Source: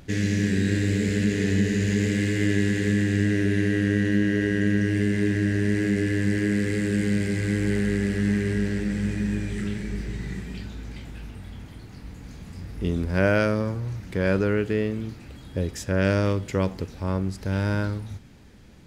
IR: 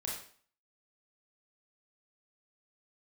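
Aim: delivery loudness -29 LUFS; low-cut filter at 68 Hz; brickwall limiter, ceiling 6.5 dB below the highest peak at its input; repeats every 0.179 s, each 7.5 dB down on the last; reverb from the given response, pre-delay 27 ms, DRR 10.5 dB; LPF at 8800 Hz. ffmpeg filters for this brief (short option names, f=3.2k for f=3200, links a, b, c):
-filter_complex "[0:a]highpass=68,lowpass=8.8k,alimiter=limit=-13.5dB:level=0:latency=1,aecho=1:1:179|358|537|716|895:0.422|0.177|0.0744|0.0312|0.0131,asplit=2[a][b];[1:a]atrim=start_sample=2205,adelay=27[c];[b][c]afir=irnorm=-1:irlink=0,volume=-11.5dB[d];[a][d]amix=inputs=2:normalize=0,volume=-4.5dB"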